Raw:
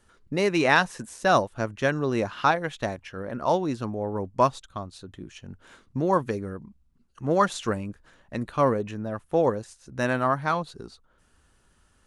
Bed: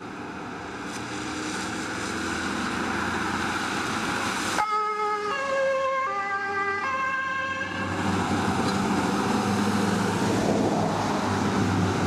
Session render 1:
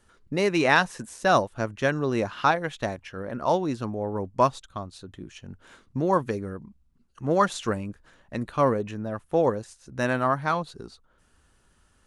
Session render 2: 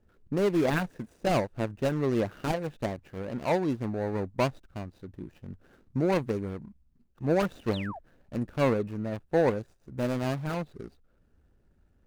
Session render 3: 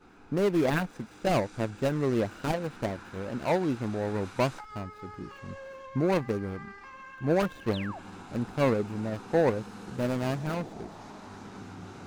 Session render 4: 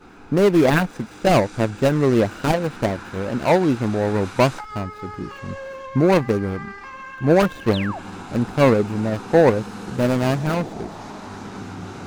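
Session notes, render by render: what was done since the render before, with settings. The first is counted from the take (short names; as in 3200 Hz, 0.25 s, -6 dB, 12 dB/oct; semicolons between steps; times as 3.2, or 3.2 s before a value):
nothing audible
median filter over 41 samples; 7.73–7.99 painted sound fall 600–4500 Hz -41 dBFS
add bed -20 dB
gain +10 dB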